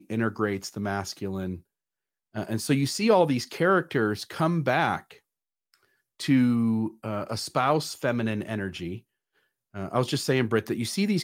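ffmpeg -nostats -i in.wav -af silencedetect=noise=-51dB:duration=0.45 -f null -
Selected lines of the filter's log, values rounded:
silence_start: 1.61
silence_end: 2.35 | silence_duration: 0.74
silence_start: 5.19
silence_end: 5.74 | silence_duration: 0.55
silence_start: 9.01
silence_end: 9.74 | silence_duration: 0.73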